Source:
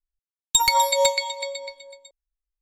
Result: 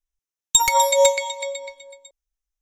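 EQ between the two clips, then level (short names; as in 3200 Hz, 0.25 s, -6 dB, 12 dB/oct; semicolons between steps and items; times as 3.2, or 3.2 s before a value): bell 6100 Hz +8.5 dB 0.43 oct; notch 4500 Hz, Q 6.5; dynamic EQ 510 Hz, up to +5 dB, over -34 dBFS, Q 2.3; +1.0 dB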